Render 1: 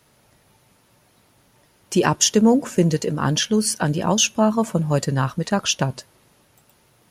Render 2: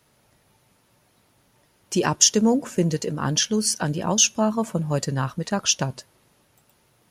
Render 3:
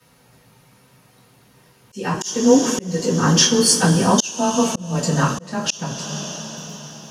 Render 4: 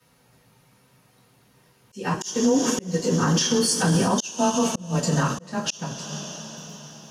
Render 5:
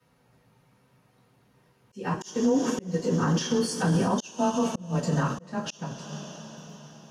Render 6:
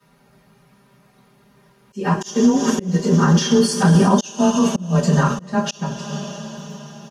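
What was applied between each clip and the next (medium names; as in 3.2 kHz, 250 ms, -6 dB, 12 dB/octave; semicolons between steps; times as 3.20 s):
dynamic bell 5.8 kHz, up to +7 dB, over -36 dBFS, Q 1.4; trim -4 dB
two-slope reverb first 0.23 s, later 4.7 s, from -21 dB, DRR -9.5 dB; frequency shift +17 Hz; slow attack 467 ms; trim -1 dB
peak limiter -11 dBFS, peak gain reduction 9 dB; upward expansion 1.5:1, over -28 dBFS
treble shelf 3.1 kHz -10 dB; trim -3 dB
comb 5 ms, depth 98%; trim +6.5 dB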